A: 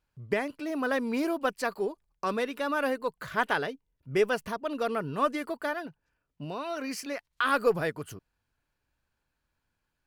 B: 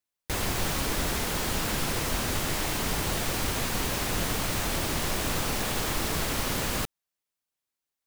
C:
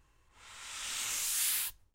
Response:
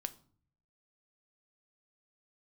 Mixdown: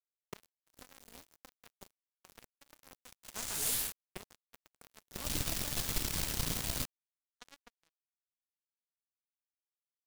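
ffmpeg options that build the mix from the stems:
-filter_complex "[0:a]highshelf=f=2.2k:g=-11.5,volume=-4dB[a];[1:a]volume=-4dB,afade=t=in:st=5.05:d=0.26:silence=0.266073,asplit=2[b][c];[c]volume=-17.5dB[d];[2:a]afwtdn=0.00501,adelay=2250,volume=-1dB[e];[d]aecho=0:1:106:1[f];[a][b][e][f]amix=inputs=4:normalize=0,agate=range=-12dB:threshold=-36dB:ratio=16:detection=peak,acrossover=split=200|3000[g][h][i];[h]acompressor=threshold=-44dB:ratio=8[j];[g][j][i]amix=inputs=3:normalize=0,acrusher=bits=4:mix=0:aa=0.5"

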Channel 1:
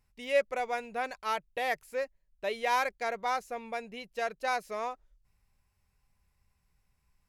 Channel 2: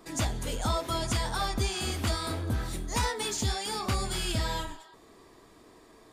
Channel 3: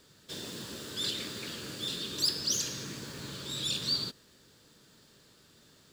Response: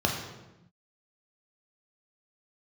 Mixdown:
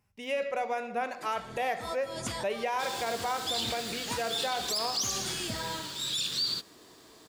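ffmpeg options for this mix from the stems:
-filter_complex "[0:a]volume=0dB,asplit=3[a][b][c];[b]volume=-16.5dB[d];[1:a]adelay=1150,volume=-1dB[e];[2:a]tiltshelf=f=970:g=-5.5,adelay=2500,volume=-1dB[f];[c]apad=whole_len=320740[g];[e][g]sidechaincompress=threshold=-48dB:ratio=5:attack=16:release=153[h];[a][h]amix=inputs=2:normalize=0,highpass=140,acompressor=threshold=-31dB:ratio=6,volume=0dB[i];[3:a]atrim=start_sample=2205[j];[d][j]afir=irnorm=-1:irlink=0[k];[f][i][k]amix=inputs=3:normalize=0,alimiter=limit=-22dB:level=0:latency=1:release=24"

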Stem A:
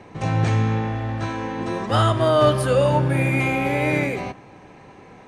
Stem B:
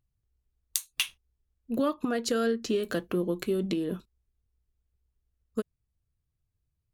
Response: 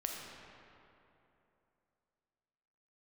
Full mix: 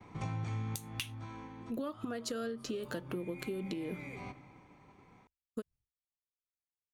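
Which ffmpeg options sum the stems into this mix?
-filter_complex "[0:a]aecho=1:1:0.9:0.43,volume=-3.5dB,afade=t=out:st=0.92:d=0.58:silence=0.237137,afade=t=in:st=2.5:d=0.74:silence=0.398107,asplit=2[a][b];[b]volume=-16.5dB[c];[1:a]volume=-4.5dB,asplit=2[d][e];[e]apad=whole_len=232472[f];[a][f]sidechaincompress=threshold=-49dB:ratio=8:attack=50:release=320[g];[2:a]atrim=start_sample=2205[h];[c][h]afir=irnorm=-1:irlink=0[i];[g][d][i]amix=inputs=3:normalize=0,agate=range=-33dB:threshold=-56dB:ratio=3:detection=peak,acompressor=threshold=-35dB:ratio=6"

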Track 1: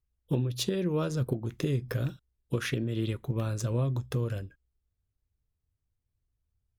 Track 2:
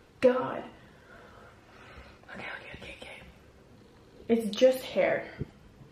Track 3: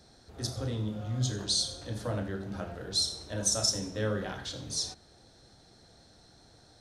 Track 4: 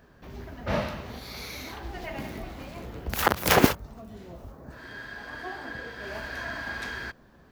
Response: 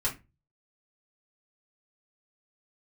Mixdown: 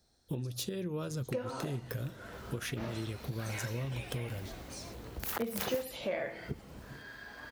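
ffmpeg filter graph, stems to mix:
-filter_complex "[0:a]deesser=0.6,volume=-1dB[a];[1:a]dynaudnorm=f=390:g=3:m=6dB,adelay=1100,volume=-3dB[b];[2:a]acompressor=threshold=-33dB:ratio=6,volume=-15.5dB[c];[3:a]adelay=2100,volume=-8.5dB[d];[a][b][c][d]amix=inputs=4:normalize=0,highshelf=f=6.9k:g=10,acompressor=threshold=-36dB:ratio=3"

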